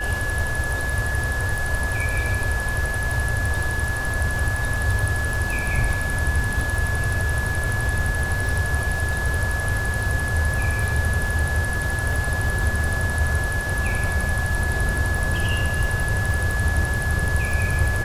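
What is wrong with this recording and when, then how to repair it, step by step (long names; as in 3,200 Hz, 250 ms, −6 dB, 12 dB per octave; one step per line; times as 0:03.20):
surface crackle 20 per second −27 dBFS
whistle 1,700 Hz −26 dBFS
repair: click removal
notch filter 1,700 Hz, Q 30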